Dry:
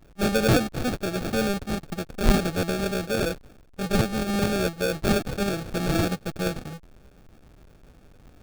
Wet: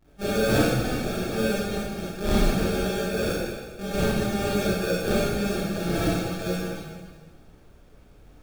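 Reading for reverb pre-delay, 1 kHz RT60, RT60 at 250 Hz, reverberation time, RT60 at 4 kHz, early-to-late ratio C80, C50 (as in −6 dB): 26 ms, 1.5 s, 1.7 s, 1.5 s, 1.4 s, −0.5 dB, −4.0 dB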